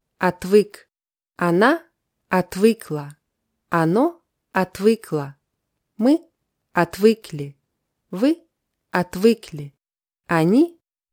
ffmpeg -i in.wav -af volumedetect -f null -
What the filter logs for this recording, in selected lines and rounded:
mean_volume: -21.6 dB
max_volume: -2.4 dB